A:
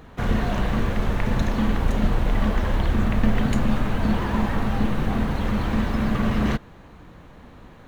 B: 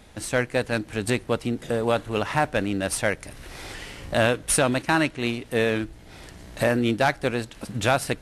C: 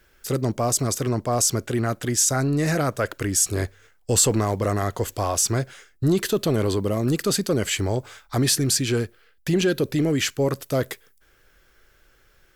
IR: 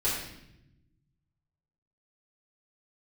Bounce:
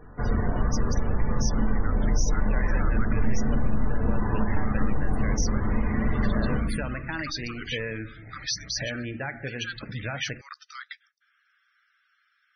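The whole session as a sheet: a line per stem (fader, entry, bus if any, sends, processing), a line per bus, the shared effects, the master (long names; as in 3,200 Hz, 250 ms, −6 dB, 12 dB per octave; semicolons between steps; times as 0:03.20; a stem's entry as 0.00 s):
−8.5 dB, 0.00 s, send −5.5 dB, low-pass filter 3,100 Hz 12 dB per octave
−5.0 dB, 2.20 s, send −16 dB, graphic EQ with 10 bands 125 Hz +7 dB, 2,000 Hz +11 dB, 4,000 Hz −4 dB, 8,000 Hz −12 dB; downward compressor 3 to 1, threshold −29 dBFS, peak gain reduction 12.5 dB; soft clipping −15.5 dBFS, distortion −25 dB
−3.5 dB, 0.00 s, muted 0:03.41–0:04.58, no send, Chebyshev band-pass filter 1,200–6,000 Hz, order 4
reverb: on, RT60 0.85 s, pre-delay 3 ms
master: spectral peaks only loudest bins 64; downward compressor 2 to 1, threshold −20 dBFS, peak gain reduction 6 dB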